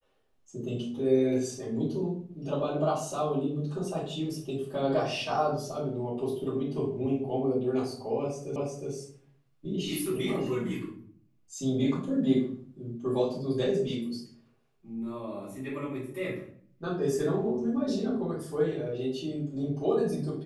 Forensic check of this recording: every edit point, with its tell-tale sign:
0:08.56: the same again, the last 0.36 s

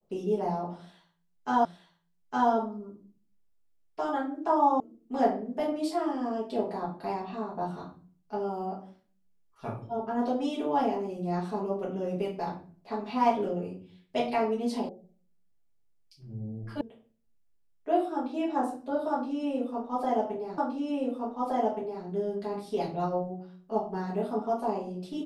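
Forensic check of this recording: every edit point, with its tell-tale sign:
0:01.65: the same again, the last 0.86 s
0:04.80: cut off before it has died away
0:14.89: cut off before it has died away
0:16.81: cut off before it has died away
0:20.58: the same again, the last 1.47 s

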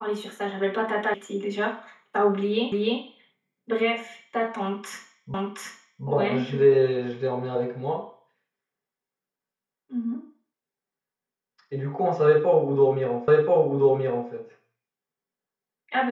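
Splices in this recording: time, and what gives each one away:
0:01.14: cut off before it has died away
0:02.72: the same again, the last 0.3 s
0:05.34: the same again, the last 0.72 s
0:13.28: the same again, the last 1.03 s

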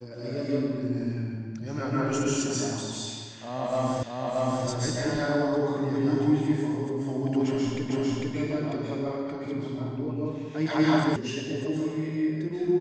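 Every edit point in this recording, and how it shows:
0:04.03: the same again, the last 0.63 s
0:07.90: the same again, the last 0.45 s
0:11.16: cut off before it has died away

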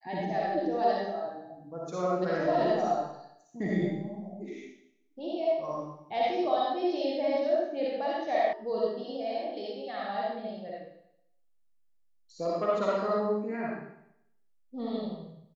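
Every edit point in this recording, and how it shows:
0:08.53: cut off before it has died away

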